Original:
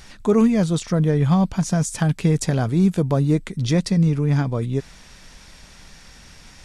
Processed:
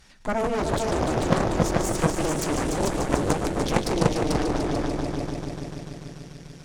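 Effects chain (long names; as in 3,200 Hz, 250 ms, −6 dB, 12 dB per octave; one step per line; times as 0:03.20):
echo machine with several playback heads 147 ms, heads all three, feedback 72%, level −8 dB
harmonic generator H 3 −8 dB, 5 −34 dB, 7 −29 dB, 8 −19 dB, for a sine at −2.5 dBFS
level −1 dB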